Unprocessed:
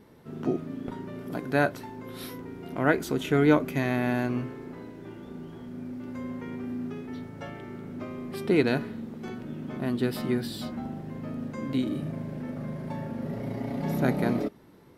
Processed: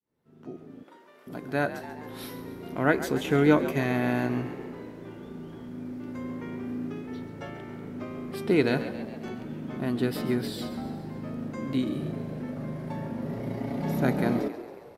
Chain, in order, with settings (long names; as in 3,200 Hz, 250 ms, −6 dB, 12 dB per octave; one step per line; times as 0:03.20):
fade in at the beginning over 2.39 s
0:00.83–0:01.27: high-pass filter 760 Hz 12 dB per octave
echo with shifted repeats 137 ms, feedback 58%, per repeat +55 Hz, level −13 dB